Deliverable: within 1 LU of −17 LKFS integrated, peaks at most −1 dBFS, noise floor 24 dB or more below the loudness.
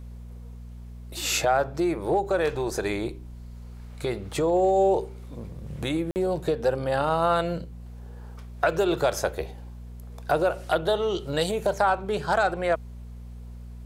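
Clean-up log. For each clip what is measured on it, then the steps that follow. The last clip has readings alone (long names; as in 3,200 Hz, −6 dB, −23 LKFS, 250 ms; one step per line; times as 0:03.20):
number of dropouts 1; longest dropout 49 ms; mains hum 60 Hz; hum harmonics up to 240 Hz; level of the hum −38 dBFS; integrated loudness −25.5 LKFS; sample peak −7.5 dBFS; target loudness −17.0 LKFS
→ repair the gap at 0:06.11, 49 ms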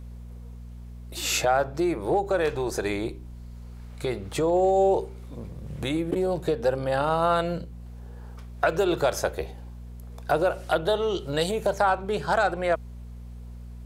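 number of dropouts 0; mains hum 60 Hz; hum harmonics up to 240 Hz; level of the hum −38 dBFS
→ hum removal 60 Hz, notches 4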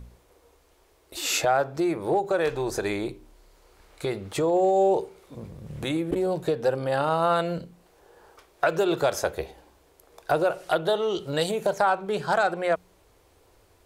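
mains hum none found; integrated loudness −25.5 LKFS; sample peak −8.0 dBFS; target loudness −17.0 LKFS
→ level +8.5 dB
brickwall limiter −1 dBFS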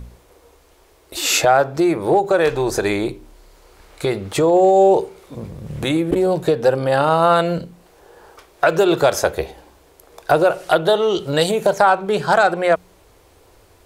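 integrated loudness −17.0 LKFS; sample peak −1.0 dBFS; background noise floor −52 dBFS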